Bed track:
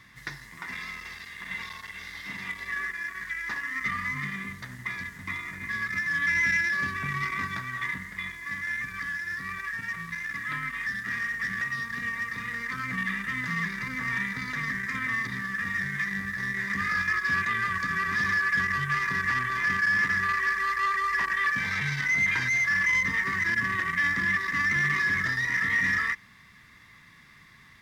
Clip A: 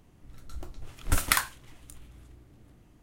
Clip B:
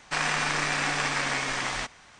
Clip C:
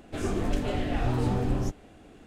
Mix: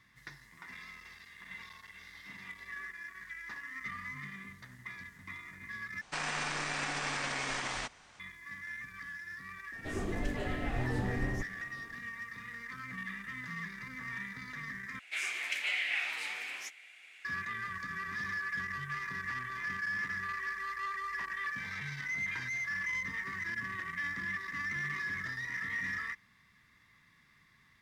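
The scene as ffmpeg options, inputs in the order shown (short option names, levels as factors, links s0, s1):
-filter_complex "[3:a]asplit=2[s0][s1];[0:a]volume=0.266[s2];[2:a]alimiter=limit=0.112:level=0:latency=1:release=37[s3];[s1]highpass=f=2200:t=q:w=6.3[s4];[s2]asplit=3[s5][s6][s7];[s5]atrim=end=6.014[s8];[s3]atrim=end=2.19,asetpts=PTS-STARTPTS,volume=0.501[s9];[s6]atrim=start=8.196:end=14.994[s10];[s4]atrim=end=2.26[s11];[s7]atrim=start=17.246[s12];[s0]atrim=end=2.26,asetpts=PTS-STARTPTS,volume=0.422,afade=t=in:d=0.004:c=hsin,afade=t=out:st=2.256:d=0.004:c=hsin,adelay=9720[s13];[s8][s9]acrossfade=d=0.004:c1=hsin:c2=hsin[s14];[s14][s10]acrossfade=d=0.004:c1=hsin:c2=hsin[s15];[s15][s11]acrossfade=d=0.004:c1=hsin:c2=hsin[s16];[s16][s12]acrossfade=d=0.004:c1=hsin:c2=hsin[s17];[s17][s13]amix=inputs=2:normalize=0"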